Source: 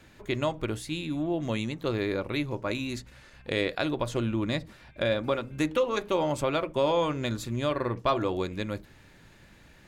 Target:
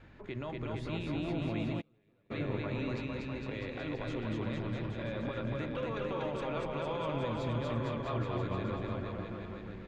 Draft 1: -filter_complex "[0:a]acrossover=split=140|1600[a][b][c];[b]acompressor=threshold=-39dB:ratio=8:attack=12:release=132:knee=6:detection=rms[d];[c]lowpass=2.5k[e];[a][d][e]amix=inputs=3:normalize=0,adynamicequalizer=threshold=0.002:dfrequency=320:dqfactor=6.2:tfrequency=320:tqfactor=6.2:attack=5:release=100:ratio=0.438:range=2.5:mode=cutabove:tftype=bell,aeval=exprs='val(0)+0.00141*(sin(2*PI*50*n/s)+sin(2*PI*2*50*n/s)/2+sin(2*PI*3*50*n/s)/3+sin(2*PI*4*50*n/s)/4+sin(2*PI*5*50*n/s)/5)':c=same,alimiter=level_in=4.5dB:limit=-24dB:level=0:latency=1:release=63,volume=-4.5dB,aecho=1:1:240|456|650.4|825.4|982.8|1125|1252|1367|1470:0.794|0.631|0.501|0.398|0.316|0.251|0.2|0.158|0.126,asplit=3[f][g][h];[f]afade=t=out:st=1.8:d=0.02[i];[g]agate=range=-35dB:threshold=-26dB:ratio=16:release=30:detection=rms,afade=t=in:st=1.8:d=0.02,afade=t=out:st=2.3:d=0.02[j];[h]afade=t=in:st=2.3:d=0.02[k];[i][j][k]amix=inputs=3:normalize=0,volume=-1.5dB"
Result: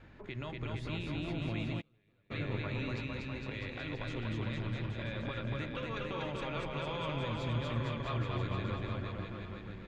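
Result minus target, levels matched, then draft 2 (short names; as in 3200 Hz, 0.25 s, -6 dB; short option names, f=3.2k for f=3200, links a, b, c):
compressor: peak gain reduction +9.5 dB
-filter_complex "[0:a]acrossover=split=140|1600[a][b][c];[b]acompressor=threshold=-28dB:ratio=8:attack=12:release=132:knee=6:detection=rms[d];[c]lowpass=2.5k[e];[a][d][e]amix=inputs=3:normalize=0,adynamicequalizer=threshold=0.002:dfrequency=320:dqfactor=6.2:tfrequency=320:tqfactor=6.2:attack=5:release=100:ratio=0.438:range=2.5:mode=cutabove:tftype=bell,aeval=exprs='val(0)+0.00141*(sin(2*PI*50*n/s)+sin(2*PI*2*50*n/s)/2+sin(2*PI*3*50*n/s)/3+sin(2*PI*4*50*n/s)/4+sin(2*PI*5*50*n/s)/5)':c=same,alimiter=level_in=4.5dB:limit=-24dB:level=0:latency=1:release=63,volume=-4.5dB,aecho=1:1:240|456|650.4|825.4|982.8|1125|1252|1367|1470:0.794|0.631|0.501|0.398|0.316|0.251|0.2|0.158|0.126,asplit=3[f][g][h];[f]afade=t=out:st=1.8:d=0.02[i];[g]agate=range=-35dB:threshold=-26dB:ratio=16:release=30:detection=rms,afade=t=in:st=1.8:d=0.02,afade=t=out:st=2.3:d=0.02[j];[h]afade=t=in:st=2.3:d=0.02[k];[i][j][k]amix=inputs=3:normalize=0,volume=-1.5dB"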